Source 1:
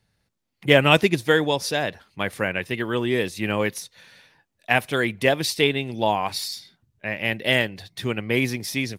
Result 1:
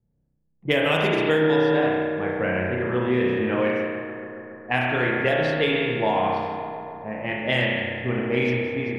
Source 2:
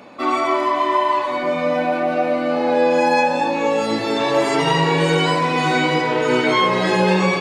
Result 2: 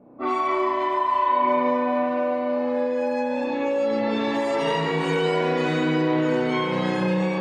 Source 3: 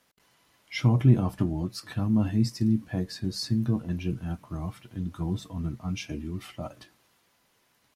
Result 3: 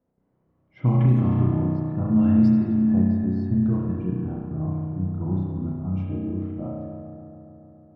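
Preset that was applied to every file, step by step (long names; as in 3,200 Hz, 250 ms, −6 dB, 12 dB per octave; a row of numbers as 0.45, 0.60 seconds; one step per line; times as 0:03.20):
low-pass that shuts in the quiet parts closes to 410 Hz, open at −13 dBFS
spring reverb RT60 1.4 s, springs 32 ms, chirp 60 ms, DRR −2.5 dB
downward compressor, threshold −15 dBFS
on a send: bucket-brigade delay 141 ms, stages 2,048, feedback 78%, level −9.5 dB
on the sum: loudness normalisation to −23 LKFS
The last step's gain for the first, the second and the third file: −2.5, −6.0, +0.5 decibels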